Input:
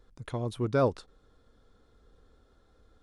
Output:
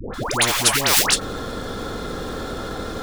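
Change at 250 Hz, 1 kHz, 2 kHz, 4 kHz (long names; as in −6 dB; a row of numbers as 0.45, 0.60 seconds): +7.5, +14.0, +22.5, +30.5 decibels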